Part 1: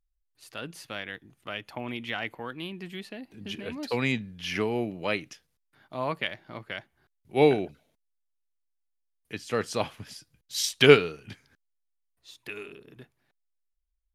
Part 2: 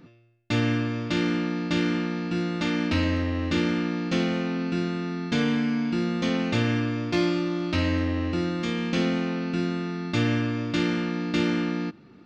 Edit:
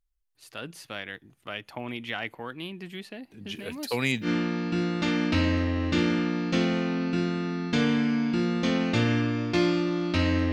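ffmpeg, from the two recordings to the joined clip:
ffmpeg -i cue0.wav -i cue1.wav -filter_complex "[0:a]asettb=1/sr,asplit=3[link_01][link_02][link_03];[link_01]atrim=end=3.554[link_04];[link_02]atrim=start=3.55:end=4.29,asetpts=PTS-STARTPTS,afade=type=in:duration=0.004:curve=qsin,afade=type=out:start_time=0.736:duration=0.004:curve=qsin,aemphasis=mode=production:type=50fm[link_05];[link_03]atrim=start=4.286[link_06];[link_04][link_05]acrossfade=duration=0.004:curve1=hsin:curve2=qsin[link_07];[link_07][link_06]acrossfade=duration=0.004:curve1=qsin:curve2=hsin,apad=whole_dur=10.52,atrim=end=10.52,atrim=end=4.29,asetpts=PTS-STARTPTS[link_08];[1:a]atrim=start=1.8:end=8.11,asetpts=PTS-STARTPTS[link_09];[link_08][link_09]acrossfade=duration=0.08:curve1=tri:curve2=tri" out.wav

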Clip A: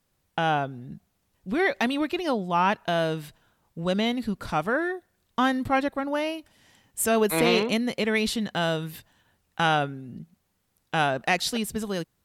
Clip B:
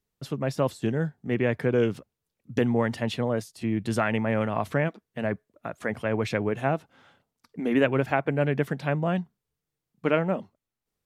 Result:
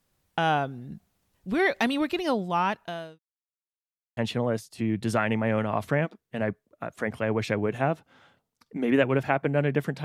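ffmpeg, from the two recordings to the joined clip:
ffmpeg -i cue0.wav -i cue1.wav -filter_complex "[0:a]apad=whole_dur=10.04,atrim=end=10.04,asplit=2[link_01][link_02];[link_01]atrim=end=3.19,asetpts=PTS-STARTPTS,afade=type=out:start_time=2.39:duration=0.8[link_03];[link_02]atrim=start=3.19:end=4.17,asetpts=PTS-STARTPTS,volume=0[link_04];[1:a]atrim=start=3:end=8.87,asetpts=PTS-STARTPTS,afade=type=in:duration=0.004:curve=hsin[link_05];[link_03][link_04][link_05]concat=n=3:v=0:a=1" out.wav

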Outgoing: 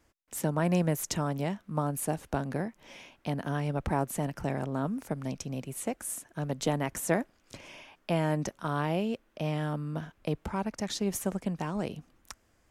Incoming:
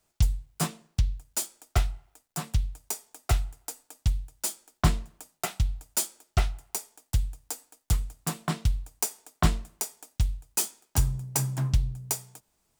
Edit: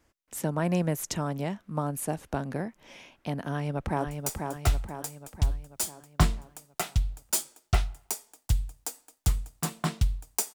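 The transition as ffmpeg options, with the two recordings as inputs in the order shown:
ffmpeg -i cue0.wav -i cue1.wav -filter_complex "[0:a]apad=whole_dur=10.54,atrim=end=10.54,atrim=end=4.072[link_01];[1:a]atrim=start=2.708:end=9.18[link_02];[link_01][link_02]acrossfade=duration=0.004:curve1=hsin:curve2=hsin,asplit=2[link_03][link_04];[link_04]afade=type=in:start_time=3.47:duration=0.01,afade=type=out:start_time=4.07:duration=0.01,aecho=0:1:490|980|1470|1960|2450|2940|3430:0.562341|0.309288|0.170108|0.0935595|0.0514577|0.0283018|0.015566[link_05];[link_03][link_05]amix=inputs=2:normalize=0" out.wav

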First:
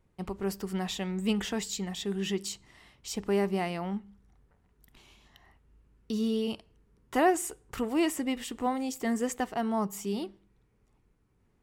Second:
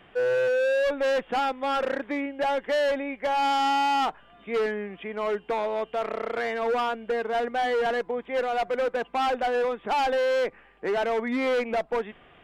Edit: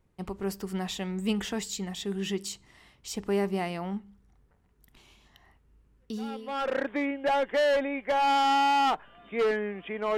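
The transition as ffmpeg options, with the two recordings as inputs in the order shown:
ffmpeg -i cue0.wav -i cue1.wav -filter_complex "[0:a]apad=whole_dur=10.17,atrim=end=10.17,atrim=end=6.8,asetpts=PTS-STARTPTS[link_01];[1:a]atrim=start=1.13:end=5.32,asetpts=PTS-STARTPTS[link_02];[link_01][link_02]acrossfade=duration=0.82:curve1=qua:curve2=qua" out.wav

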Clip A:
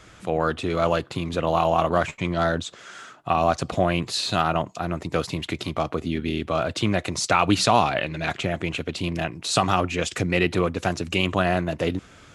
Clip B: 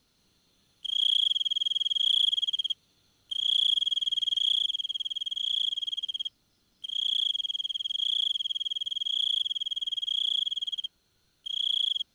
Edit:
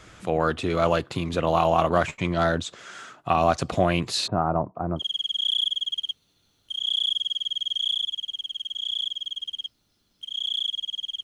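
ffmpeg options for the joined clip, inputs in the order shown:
ffmpeg -i cue0.wav -i cue1.wav -filter_complex "[0:a]asplit=3[link_01][link_02][link_03];[link_01]afade=type=out:start_time=4.26:duration=0.02[link_04];[link_02]lowpass=frequency=1100:width=0.5412,lowpass=frequency=1100:width=1.3066,afade=type=in:start_time=4.26:duration=0.02,afade=type=out:start_time=5.04:duration=0.02[link_05];[link_03]afade=type=in:start_time=5.04:duration=0.02[link_06];[link_04][link_05][link_06]amix=inputs=3:normalize=0,apad=whole_dur=11.23,atrim=end=11.23,atrim=end=5.04,asetpts=PTS-STARTPTS[link_07];[1:a]atrim=start=1.57:end=7.84,asetpts=PTS-STARTPTS[link_08];[link_07][link_08]acrossfade=duration=0.08:curve1=tri:curve2=tri" out.wav

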